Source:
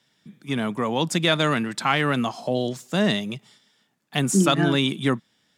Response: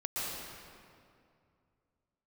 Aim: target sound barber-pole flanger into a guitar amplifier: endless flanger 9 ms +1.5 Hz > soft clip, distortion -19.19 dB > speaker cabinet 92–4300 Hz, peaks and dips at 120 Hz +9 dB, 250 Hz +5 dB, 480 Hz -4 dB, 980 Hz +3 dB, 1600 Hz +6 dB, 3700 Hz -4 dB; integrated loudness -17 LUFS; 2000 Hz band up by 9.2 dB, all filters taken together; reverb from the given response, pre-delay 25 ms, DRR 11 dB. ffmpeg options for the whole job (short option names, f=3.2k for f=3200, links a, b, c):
-filter_complex "[0:a]equalizer=f=2k:t=o:g=7.5,asplit=2[a][b];[1:a]atrim=start_sample=2205,adelay=25[c];[b][c]afir=irnorm=-1:irlink=0,volume=-16dB[d];[a][d]amix=inputs=2:normalize=0,asplit=2[e][f];[f]adelay=9,afreqshift=1.5[g];[e][g]amix=inputs=2:normalize=1,asoftclip=threshold=-12.5dB,highpass=92,equalizer=f=120:t=q:w=4:g=9,equalizer=f=250:t=q:w=4:g=5,equalizer=f=480:t=q:w=4:g=-4,equalizer=f=980:t=q:w=4:g=3,equalizer=f=1.6k:t=q:w=4:g=6,equalizer=f=3.7k:t=q:w=4:g=-4,lowpass=f=4.3k:w=0.5412,lowpass=f=4.3k:w=1.3066,volume=6dB"